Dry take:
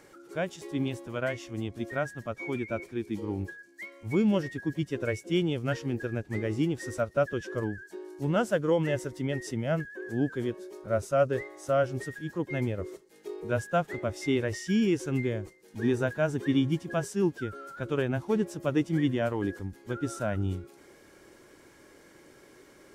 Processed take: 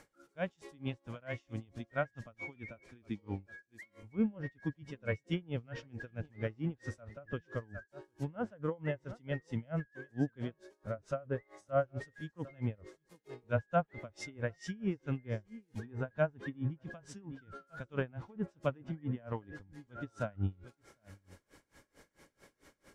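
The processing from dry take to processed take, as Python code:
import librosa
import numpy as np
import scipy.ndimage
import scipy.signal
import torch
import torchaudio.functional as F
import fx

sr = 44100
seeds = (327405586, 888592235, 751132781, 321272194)

y = fx.low_shelf(x, sr, hz=63.0, db=8.5)
y = fx.env_lowpass_down(y, sr, base_hz=1500.0, full_db=-21.5)
y = fx.peak_eq(y, sr, hz=360.0, db=-9.5, octaves=0.42)
y = y + 10.0 ** (-19.5 / 20.0) * np.pad(y, (int(754 * sr / 1000.0), 0))[:len(y)]
y = y * 10.0 ** (-28 * (0.5 - 0.5 * np.cos(2.0 * np.pi * 4.5 * np.arange(len(y)) / sr)) / 20.0)
y = F.gain(torch.from_numpy(y), -1.5).numpy()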